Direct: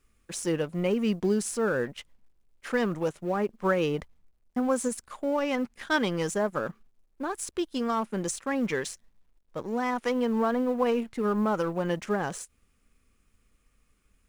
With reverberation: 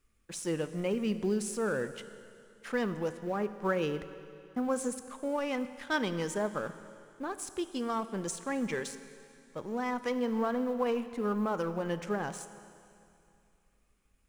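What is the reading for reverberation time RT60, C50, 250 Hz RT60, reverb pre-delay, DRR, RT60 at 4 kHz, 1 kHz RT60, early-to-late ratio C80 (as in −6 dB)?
2.6 s, 12.5 dB, 2.7 s, 18 ms, 11.5 dB, 2.6 s, 2.6 s, 13.0 dB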